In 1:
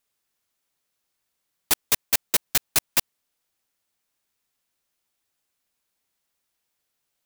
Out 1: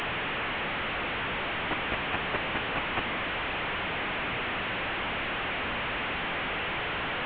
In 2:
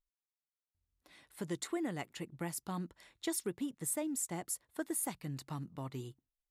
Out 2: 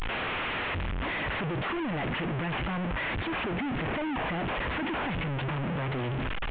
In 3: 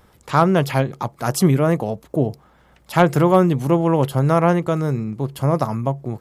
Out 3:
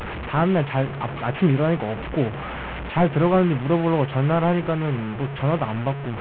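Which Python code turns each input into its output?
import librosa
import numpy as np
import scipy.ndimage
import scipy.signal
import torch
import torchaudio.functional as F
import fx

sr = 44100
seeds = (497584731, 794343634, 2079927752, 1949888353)

y = fx.delta_mod(x, sr, bps=16000, step_db=-21.5)
y = F.gain(torch.from_numpy(y), -3.0).numpy()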